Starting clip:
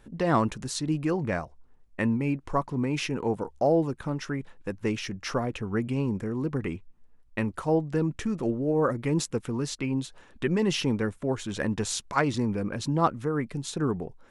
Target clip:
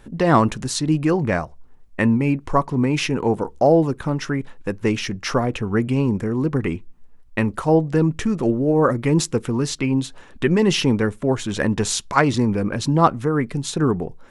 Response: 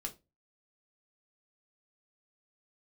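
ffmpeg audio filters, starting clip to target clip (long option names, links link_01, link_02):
-filter_complex "[0:a]asplit=2[link_01][link_02];[1:a]atrim=start_sample=2205,highshelf=frequency=4700:gain=-7.5[link_03];[link_02][link_03]afir=irnorm=-1:irlink=0,volume=-17dB[link_04];[link_01][link_04]amix=inputs=2:normalize=0,volume=7.5dB"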